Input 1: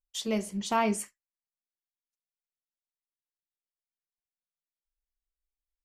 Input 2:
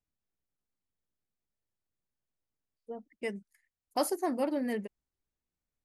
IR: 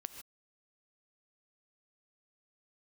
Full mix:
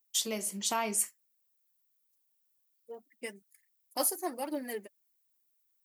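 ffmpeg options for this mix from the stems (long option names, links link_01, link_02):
-filter_complex "[0:a]acompressor=threshold=-35dB:ratio=2,volume=1.5dB[link_01];[1:a]aphaser=in_gain=1:out_gain=1:delay=4.6:decay=0.5:speed=1.1:type=triangular,volume=-4.5dB[link_02];[link_01][link_02]amix=inputs=2:normalize=0,highpass=84,aemphasis=mode=production:type=bsi"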